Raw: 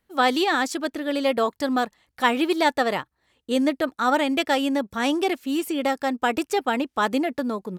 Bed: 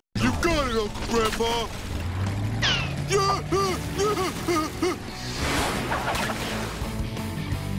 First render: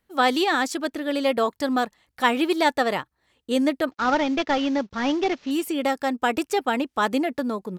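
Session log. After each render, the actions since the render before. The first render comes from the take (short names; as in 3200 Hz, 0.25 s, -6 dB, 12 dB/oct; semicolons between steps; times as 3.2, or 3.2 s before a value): 3.91–5.51 CVSD 32 kbps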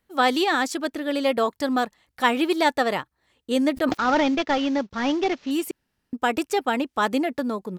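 3.71–4.35 sustainer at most 20 dB/s; 5.71–6.13 room tone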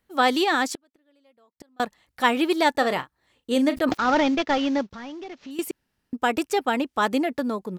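0.73–1.8 flipped gate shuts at -21 dBFS, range -38 dB; 2.71–3.76 doubler 38 ms -12 dB; 4.92–5.59 compressor 3:1, threshold -39 dBFS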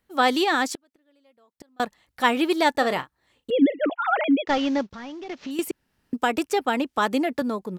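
3.5–4.47 sine-wave speech; 5.29–7.42 three-band squash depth 40%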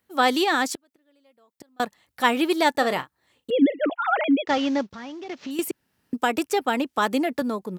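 HPF 80 Hz; high shelf 9900 Hz +6 dB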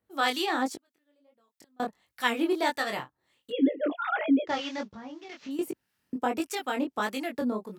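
harmonic tremolo 1.6 Hz, depth 70%, crossover 1100 Hz; chorus 1.4 Hz, delay 18.5 ms, depth 5.7 ms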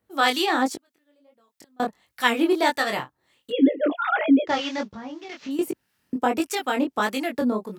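gain +6 dB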